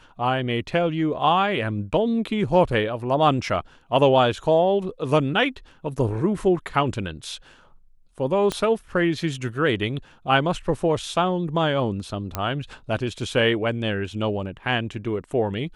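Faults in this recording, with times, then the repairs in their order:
0:08.52: click −12 dBFS
0:12.35: click −10 dBFS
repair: click removal

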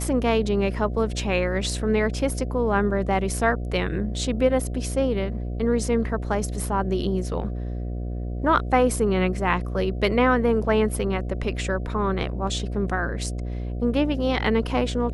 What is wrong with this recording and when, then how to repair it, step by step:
mains buzz 60 Hz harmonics 12 −29 dBFS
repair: hum removal 60 Hz, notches 12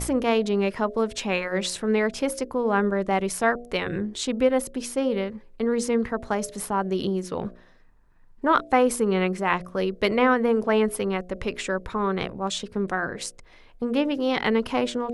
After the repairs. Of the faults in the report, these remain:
none of them is left

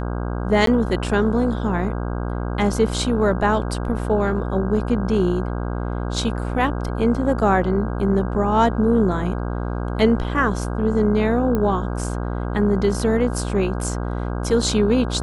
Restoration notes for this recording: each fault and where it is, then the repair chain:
mains buzz 60 Hz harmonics 27 −25 dBFS
0:00.66–0:00.67: drop-out 13 ms
0:11.55: click −11 dBFS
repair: click removal
hum removal 60 Hz, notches 27
repair the gap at 0:00.66, 13 ms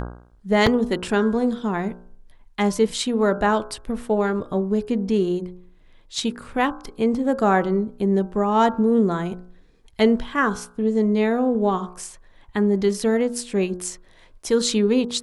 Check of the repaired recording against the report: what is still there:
none of them is left

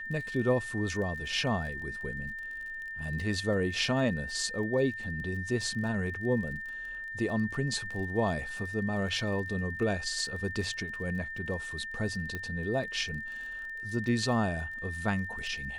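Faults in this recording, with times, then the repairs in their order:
surface crackle 28 per second −40 dBFS
whistle 1,800 Hz −37 dBFS
0:12.35: click −22 dBFS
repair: click removal
notch filter 1,800 Hz, Q 30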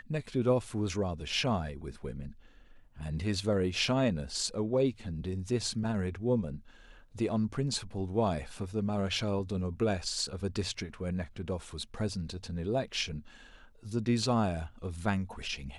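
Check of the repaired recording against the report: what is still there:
none of them is left

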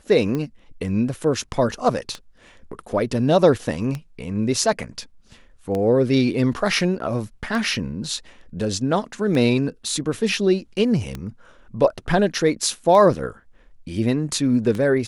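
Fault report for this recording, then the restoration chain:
scratch tick 33 1/3 rpm −14 dBFS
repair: click removal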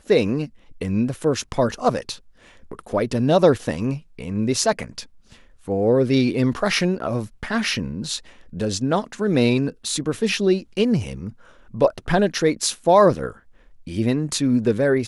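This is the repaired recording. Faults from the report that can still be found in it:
none of them is left

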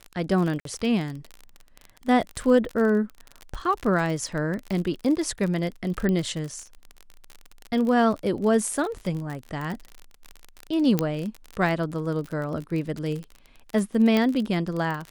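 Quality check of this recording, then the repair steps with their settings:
surface crackle 37 per second −29 dBFS
0:00.60–0:00.65: drop-out 53 ms
0:06.09: click −15 dBFS
0:10.99: click −8 dBFS
0:14.17: click −11 dBFS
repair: click removal
repair the gap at 0:00.60, 53 ms

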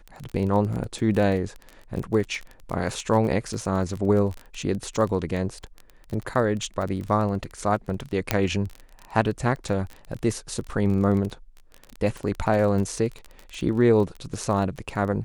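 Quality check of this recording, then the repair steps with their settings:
surface crackle 22 per second −29 dBFS
0:08.31: click −4 dBFS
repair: click removal

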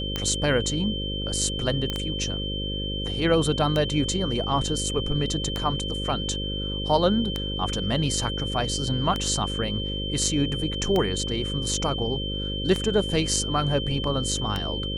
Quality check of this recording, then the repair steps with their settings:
mains buzz 50 Hz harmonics 11 −31 dBFS
scratch tick 33 1/3 rpm −12 dBFS
whistle 3,100 Hz −31 dBFS
0:01.90: click −14 dBFS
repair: click removal
notch filter 3,100 Hz, Q 30
hum removal 50 Hz, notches 11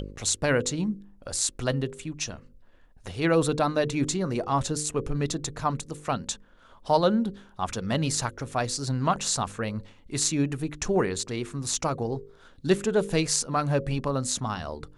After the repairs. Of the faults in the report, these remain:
none of them is left

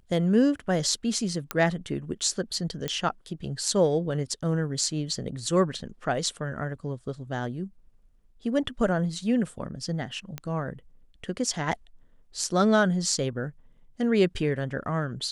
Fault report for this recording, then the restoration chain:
0:01.51: click −11 dBFS
0:02.88: click −14 dBFS
0:10.38: click −18 dBFS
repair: click removal

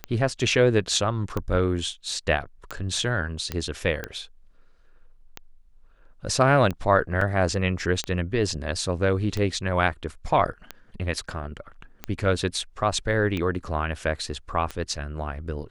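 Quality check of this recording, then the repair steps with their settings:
scratch tick 45 rpm −15 dBFS
0:03.52: click −13 dBFS
0:07.21: drop-out 3.7 ms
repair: click removal
repair the gap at 0:07.21, 3.7 ms

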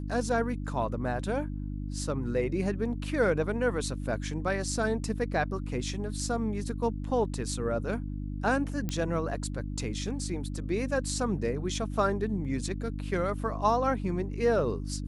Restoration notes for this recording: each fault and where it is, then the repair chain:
mains hum 50 Hz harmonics 6 −35 dBFS
0:08.89: click −18 dBFS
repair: click removal
hum removal 50 Hz, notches 6

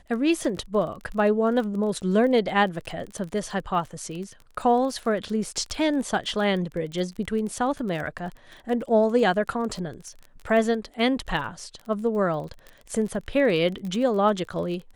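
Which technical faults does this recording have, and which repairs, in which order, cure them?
surface crackle 28 per second −32 dBFS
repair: click removal

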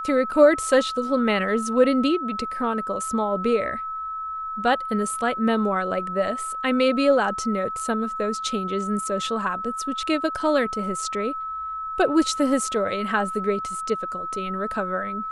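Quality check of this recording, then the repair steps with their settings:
whistle 1,300 Hz −28 dBFS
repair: notch filter 1,300 Hz, Q 30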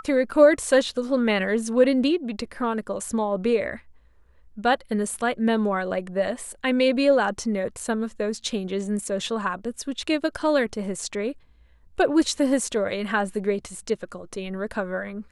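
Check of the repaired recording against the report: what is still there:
none of them is left

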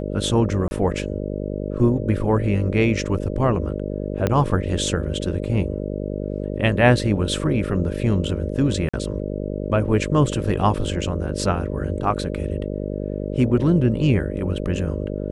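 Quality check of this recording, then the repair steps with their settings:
mains buzz 50 Hz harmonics 12 −27 dBFS
0:00.68–0:00.71: drop-out 30 ms
0:04.27: click −7 dBFS
0:08.89–0:08.94: drop-out 45 ms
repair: click removal
hum removal 50 Hz, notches 12
repair the gap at 0:00.68, 30 ms
repair the gap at 0:08.89, 45 ms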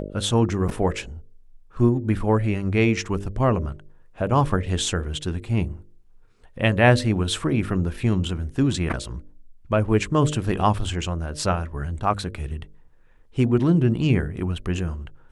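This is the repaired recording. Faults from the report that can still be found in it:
0:04.27: click

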